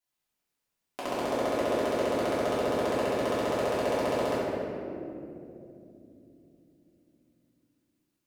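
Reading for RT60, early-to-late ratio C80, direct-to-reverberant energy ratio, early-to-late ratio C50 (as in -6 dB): 3.0 s, -1.5 dB, -11.0 dB, -3.0 dB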